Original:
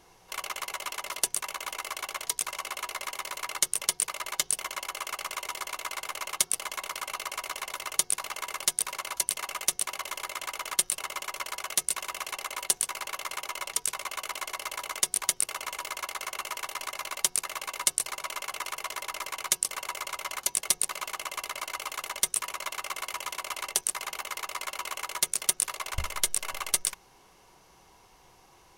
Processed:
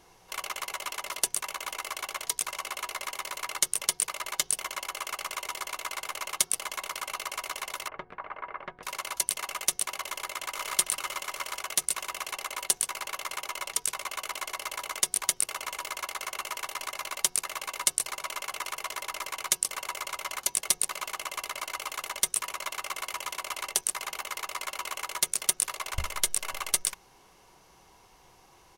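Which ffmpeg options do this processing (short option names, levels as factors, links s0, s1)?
-filter_complex "[0:a]asettb=1/sr,asplit=3[s0][s1][s2];[s0]atrim=end=7.884[s3];[s1]atrim=start=7.88:end=8.83,asetpts=PTS-STARTPTS,afade=t=in:d=0.004:c=qsin,afade=t=out:st=0.946:d=0.004:c=qsin,lowpass=f=1800:w=0.5412,lowpass=f=1800:w=1.3066[s4];[s2]atrim=start=8.826[s5];[s3][s4]acrossfade=d=0.004:c1=hsin:c2=qsin[s6];[s6][s5]acrossfade=d=0.004:c1=qsin:c2=hsin,asplit=2[s7][s8];[s8]afade=t=in:st=10.11:d=0.01,afade=t=out:st=10.69:d=0.01,aecho=0:1:450|900|1350|1800:0.630957|0.220835|0.0772923|0.0270523[s9];[s7][s9]amix=inputs=2:normalize=0"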